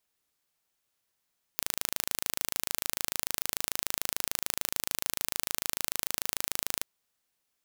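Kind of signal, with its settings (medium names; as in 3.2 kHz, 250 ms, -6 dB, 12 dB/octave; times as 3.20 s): pulse train 26.8 per s, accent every 0, -2 dBFS 5.24 s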